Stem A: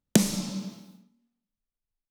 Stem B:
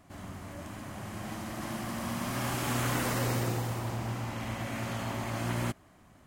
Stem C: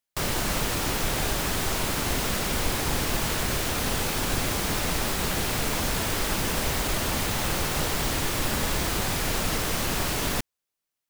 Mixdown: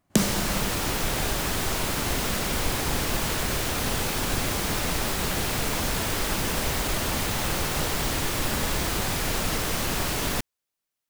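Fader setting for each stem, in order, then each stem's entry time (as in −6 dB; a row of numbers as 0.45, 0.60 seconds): −1.5, −14.0, 0.0 decibels; 0.00, 0.00, 0.00 seconds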